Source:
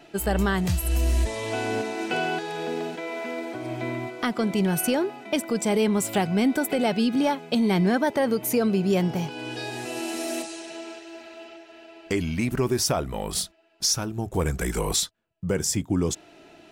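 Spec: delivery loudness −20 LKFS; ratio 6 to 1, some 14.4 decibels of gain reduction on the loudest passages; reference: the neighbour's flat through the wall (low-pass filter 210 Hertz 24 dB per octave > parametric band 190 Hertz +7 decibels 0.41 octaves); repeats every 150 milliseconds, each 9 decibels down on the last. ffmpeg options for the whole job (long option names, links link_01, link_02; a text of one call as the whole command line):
ffmpeg -i in.wav -af "acompressor=threshold=-35dB:ratio=6,lowpass=frequency=210:width=0.5412,lowpass=frequency=210:width=1.3066,equalizer=frequency=190:width_type=o:width=0.41:gain=7,aecho=1:1:150|300|450|600:0.355|0.124|0.0435|0.0152,volume=20dB" out.wav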